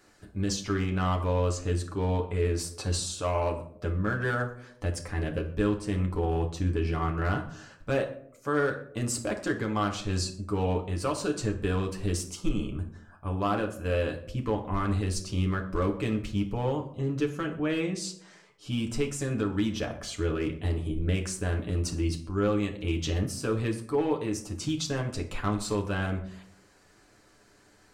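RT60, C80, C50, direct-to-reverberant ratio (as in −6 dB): 0.70 s, 14.5 dB, 11.0 dB, 1.5 dB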